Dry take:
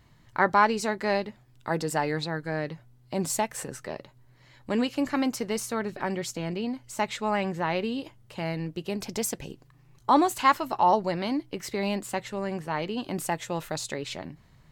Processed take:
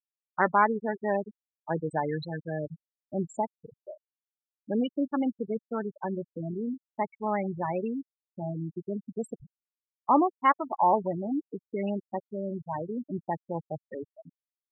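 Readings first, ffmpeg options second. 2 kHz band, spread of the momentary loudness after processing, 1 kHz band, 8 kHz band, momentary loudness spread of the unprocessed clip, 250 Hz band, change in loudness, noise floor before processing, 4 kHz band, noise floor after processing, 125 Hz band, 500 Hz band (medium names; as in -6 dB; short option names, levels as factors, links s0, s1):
-5.0 dB, 15 LU, -2.0 dB, under -20 dB, 14 LU, -1.5 dB, -2.0 dB, -58 dBFS, -16.0 dB, under -85 dBFS, -2.0 dB, -2.0 dB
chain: -af "afftfilt=real='re*gte(hypot(re,im),0.112)':imag='im*gte(hypot(re,im),0.112)':win_size=1024:overlap=0.75,aemphasis=mode=reproduction:type=50fm,volume=0.841"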